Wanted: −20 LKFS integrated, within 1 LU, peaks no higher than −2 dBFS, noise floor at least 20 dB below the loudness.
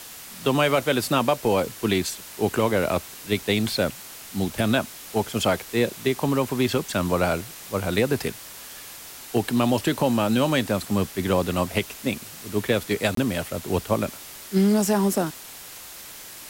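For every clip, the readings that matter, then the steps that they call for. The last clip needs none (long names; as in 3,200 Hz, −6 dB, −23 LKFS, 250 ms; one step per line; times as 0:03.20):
number of dropouts 1; longest dropout 23 ms; background noise floor −41 dBFS; target noise floor −44 dBFS; integrated loudness −24.0 LKFS; sample peak −7.5 dBFS; target loudness −20.0 LKFS
→ repair the gap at 0:13.15, 23 ms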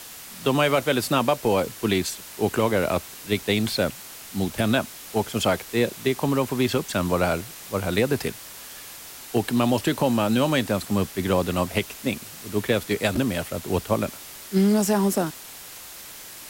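number of dropouts 0; background noise floor −41 dBFS; target noise floor −44 dBFS
→ noise reduction from a noise print 6 dB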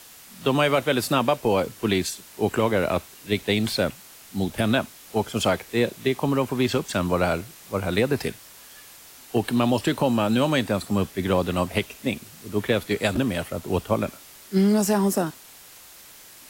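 background noise floor −47 dBFS; integrated loudness −24.5 LKFS; sample peak −7.5 dBFS; target loudness −20.0 LKFS
→ level +4.5 dB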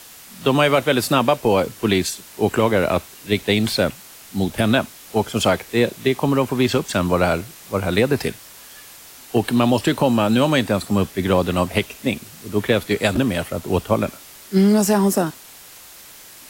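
integrated loudness −20.0 LKFS; sample peak −3.0 dBFS; background noise floor −43 dBFS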